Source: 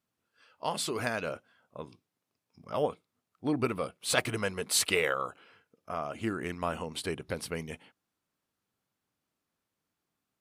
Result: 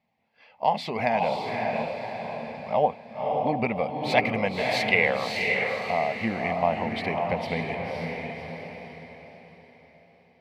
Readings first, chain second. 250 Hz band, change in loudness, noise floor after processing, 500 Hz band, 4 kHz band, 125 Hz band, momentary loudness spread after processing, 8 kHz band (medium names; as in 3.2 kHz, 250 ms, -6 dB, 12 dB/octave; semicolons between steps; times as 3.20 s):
+5.5 dB, +5.5 dB, -60 dBFS, +8.0 dB, +1.5 dB, +6.0 dB, 13 LU, -14.0 dB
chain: FFT filter 120 Hz 0 dB, 220 Hz +7 dB, 330 Hz -7 dB, 800 Hz +14 dB, 1.4 kHz -12 dB, 2.1 kHz +12 dB, 3 kHz 0 dB, 4.7 kHz -1 dB, 8.8 kHz -20 dB, 15 kHz -8 dB; echo that smears into a reverb 560 ms, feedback 40%, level -3 dB; in parallel at -0.5 dB: compression, threshold -37 dBFS, peak gain reduction 19.5 dB; on the sum: treble shelf 5.7 kHz -7.5 dB